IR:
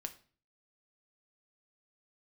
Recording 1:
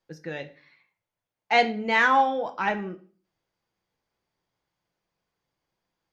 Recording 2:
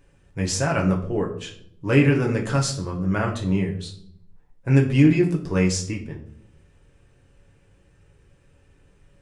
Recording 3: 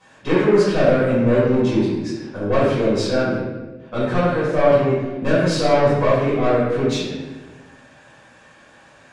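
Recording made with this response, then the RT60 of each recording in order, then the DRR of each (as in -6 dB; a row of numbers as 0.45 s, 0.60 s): 1; 0.40 s, 0.65 s, 1.2 s; 6.0 dB, -0.5 dB, -12.0 dB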